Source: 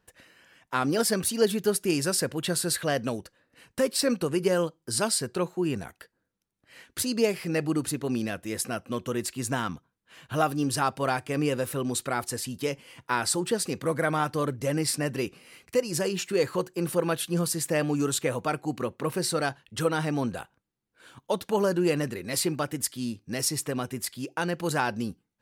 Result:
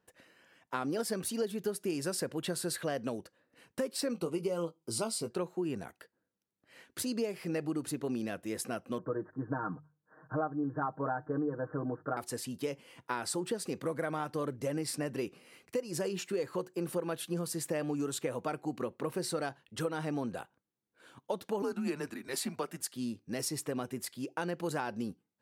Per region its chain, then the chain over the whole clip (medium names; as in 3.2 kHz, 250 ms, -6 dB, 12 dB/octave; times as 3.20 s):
4.13–5.31 s: Butterworth band-stop 1.7 kHz, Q 3.2 + doubling 18 ms -8 dB
8.98–12.17 s: steep low-pass 1.7 kHz 96 dB/octave + hum notches 50/100/150 Hz + comb 6.5 ms, depth 80%
21.62–22.94 s: frequency shift -140 Hz + high-pass 230 Hz
whole clip: high-pass 300 Hz 6 dB/octave; tilt shelf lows +4.5 dB, about 870 Hz; compression 5:1, threshold -27 dBFS; trim -3.5 dB